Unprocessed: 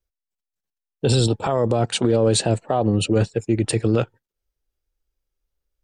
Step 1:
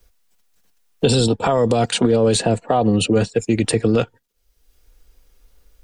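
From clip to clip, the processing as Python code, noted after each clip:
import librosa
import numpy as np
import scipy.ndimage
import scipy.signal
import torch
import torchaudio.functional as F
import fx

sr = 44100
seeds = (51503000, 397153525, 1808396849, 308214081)

y = x + 0.33 * np.pad(x, (int(4.2 * sr / 1000.0), 0))[:len(x)]
y = fx.band_squash(y, sr, depth_pct=70)
y = y * librosa.db_to_amplitude(2.5)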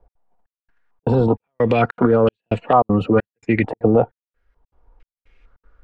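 y = fx.step_gate(x, sr, bpm=197, pattern='x.xxxx...xxx', floor_db=-60.0, edge_ms=4.5)
y = fx.filter_held_lowpass(y, sr, hz=2.2, low_hz=800.0, high_hz=2800.0)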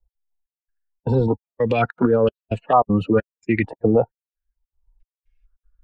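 y = fx.bin_expand(x, sr, power=1.5)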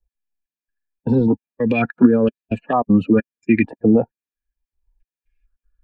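y = fx.small_body(x, sr, hz=(240.0, 1700.0, 2400.0), ring_ms=25, db=13)
y = y * librosa.db_to_amplitude(-4.5)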